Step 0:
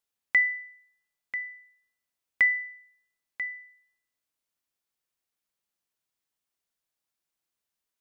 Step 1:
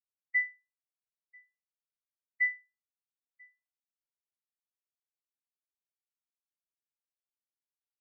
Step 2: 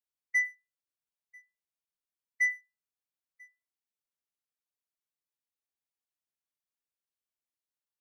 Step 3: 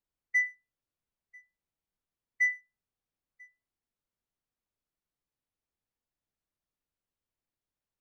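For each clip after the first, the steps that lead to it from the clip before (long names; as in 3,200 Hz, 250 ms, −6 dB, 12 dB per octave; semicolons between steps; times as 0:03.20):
every bin expanded away from the loudest bin 2.5 to 1; level −7.5 dB
leveller curve on the samples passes 1
spectral tilt −3 dB per octave; level +3.5 dB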